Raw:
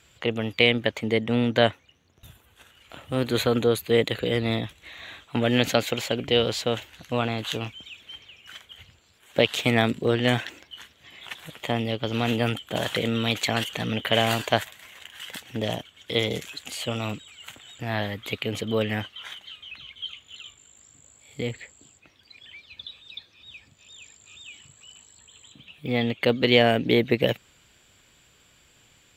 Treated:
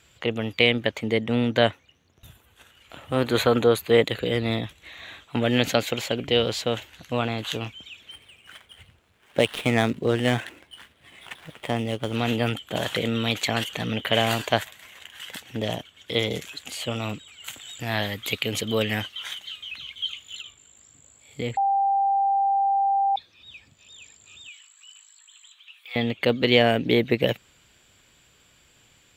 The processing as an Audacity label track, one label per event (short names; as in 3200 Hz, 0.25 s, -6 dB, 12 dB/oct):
3.020000	4.050000	bell 1000 Hz +6 dB 2.1 oct
8.110000	12.160000	median filter over 9 samples
17.440000	20.420000	high shelf 3100 Hz +10.5 dB
21.570000	23.160000	bleep 790 Hz -18.5 dBFS
24.480000	25.960000	HPF 1100 Hz 24 dB/oct